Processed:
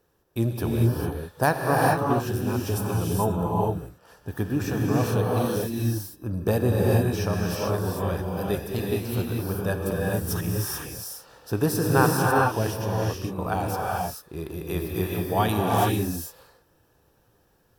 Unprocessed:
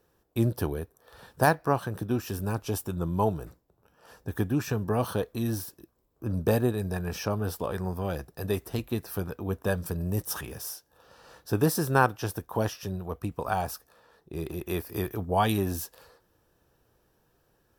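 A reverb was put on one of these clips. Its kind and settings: gated-style reverb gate 470 ms rising, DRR -2.5 dB

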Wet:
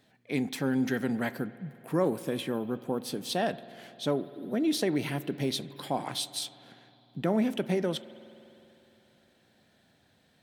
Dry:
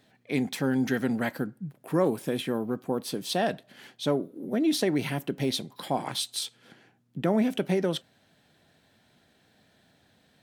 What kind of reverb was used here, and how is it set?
spring tank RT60 3.2 s, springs 50 ms, chirp 35 ms, DRR 16 dB; trim -2.5 dB

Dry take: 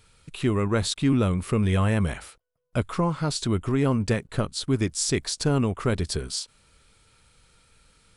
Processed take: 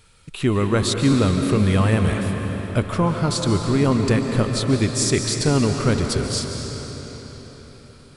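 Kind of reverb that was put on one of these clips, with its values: algorithmic reverb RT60 4.8 s, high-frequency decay 0.85×, pre-delay 100 ms, DRR 3.5 dB; trim +4 dB

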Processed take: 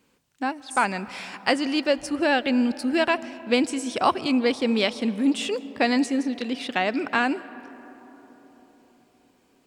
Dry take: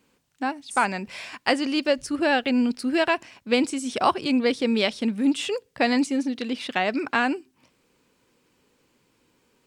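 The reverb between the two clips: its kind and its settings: algorithmic reverb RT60 4.5 s, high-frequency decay 0.3×, pre-delay 105 ms, DRR 17 dB

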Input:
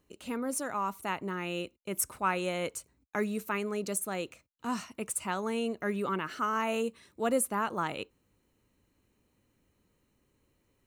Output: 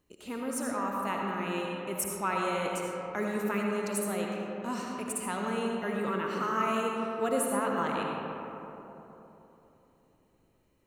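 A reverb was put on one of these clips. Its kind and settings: algorithmic reverb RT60 3.5 s, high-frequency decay 0.35×, pre-delay 35 ms, DRR -1.5 dB; trim -2.5 dB

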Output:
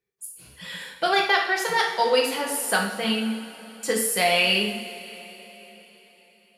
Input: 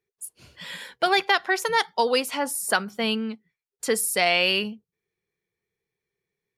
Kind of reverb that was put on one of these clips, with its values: two-slope reverb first 0.58 s, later 4.2 s, from -18 dB, DRR -1.5 dB; trim -3 dB

